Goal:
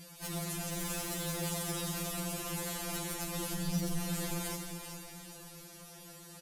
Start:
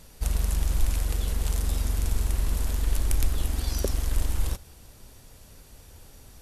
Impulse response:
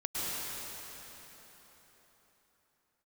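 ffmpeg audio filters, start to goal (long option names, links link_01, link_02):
-filter_complex "[0:a]highpass=65,asplit=3[link_01][link_02][link_03];[link_01]afade=type=out:start_time=3.54:duration=0.02[link_04];[link_02]asubboost=boost=9:cutoff=99,afade=type=in:start_time=3.54:duration=0.02,afade=type=out:start_time=3.97:duration=0.02[link_05];[link_03]afade=type=in:start_time=3.97:duration=0.02[link_06];[link_04][link_05][link_06]amix=inputs=3:normalize=0,asplit=2[link_07][link_08];[link_08]alimiter=limit=-16.5dB:level=0:latency=1:release=355,volume=1dB[link_09];[link_07][link_09]amix=inputs=2:normalize=0,asoftclip=type=tanh:threshold=-20dB,flanger=delay=6.5:depth=9.8:regen=-70:speed=0.52:shape=triangular,asettb=1/sr,asplit=3[link_10][link_11][link_12];[link_10]atrim=end=0.714[link_13];[link_11]atrim=start=0.71:end=1.5,asetpts=PTS-STARTPTS,afade=type=in:duration=0.004:curve=qsin,afade=type=out:start_time=0.786:duration=0.004:curve=qsin,acrusher=bits=5:mode=log:mix=0:aa=0.000001[link_14];[link_12]atrim=start=1.496[link_15];[link_13][link_14]acrossfade=duration=0.004:curve1=hsin:curve2=qsin[link_16];[link_16][link_15]acrossfade=duration=0.004:curve1=qsin:curve2=hsin,aecho=1:1:394|788|1182|1576|1970:0.316|0.139|0.0612|0.0269|0.0119,asplit=2[link_17][link_18];[1:a]atrim=start_sample=2205,asetrate=61740,aresample=44100[link_19];[link_18][link_19]afir=irnorm=-1:irlink=0,volume=-8dB[link_20];[link_17][link_20]amix=inputs=2:normalize=0,afftfilt=real='re*2.83*eq(mod(b,8),0)':imag='im*2.83*eq(mod(b,8),0)':win_size=2048:overlap=0.75"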